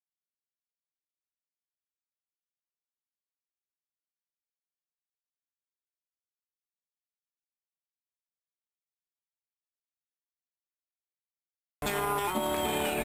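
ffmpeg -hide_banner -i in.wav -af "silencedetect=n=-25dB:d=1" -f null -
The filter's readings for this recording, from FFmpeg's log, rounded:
silence_start: 0.00
silence_end: 11.82 | silence_duration: 11.82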